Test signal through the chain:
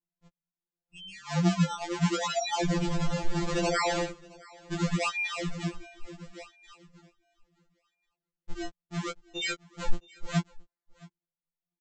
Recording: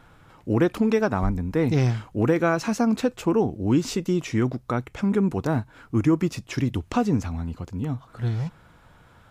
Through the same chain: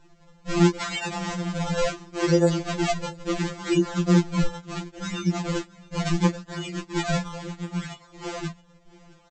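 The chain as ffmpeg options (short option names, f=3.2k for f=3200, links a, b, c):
-filter_complex "[0:a]acrossover=split=390|3000[a][b][c];[b]acompressor=threshold=-25dB:ratio=6[d];[a][d][c]amix=inputs=3:normalize=0,flanger=delay=19.5:depth=3.5:speed=0.84,aresample=16000,acrusher=samples=24:mix=1:aa=0.000001:lfo=1:lforange=38.4:lforate=0.72,aresample=44100,aecho=1:1:669:0.0668,afftfilt=real='re*2.83*eq(mod(b,8),0)':imag='im*2.83*eq(mod(b,8),0)':win_size=2048:overlap=0.75,volume=4.5dB"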